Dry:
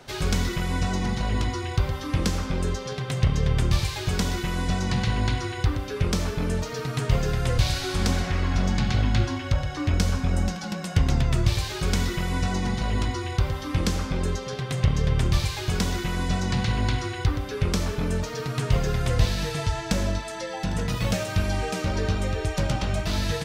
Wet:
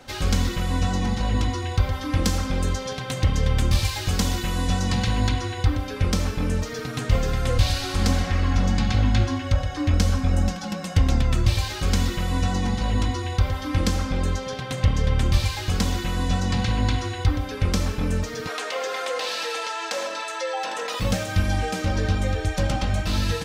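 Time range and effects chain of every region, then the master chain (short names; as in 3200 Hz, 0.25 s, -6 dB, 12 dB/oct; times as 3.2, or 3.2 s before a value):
2.24–5.29 high shelf 5700 Hz +5.5 dB + overloaded stage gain 14 dB
18.47–21 HPF 460 Hz 24 dB/oct + high shelf 9900 Hz -10 dB + fast leveller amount 70%
whole clip: bell 100 Hz +6.5 dB 0.59 oct; comb 3.8 ms, depth 57%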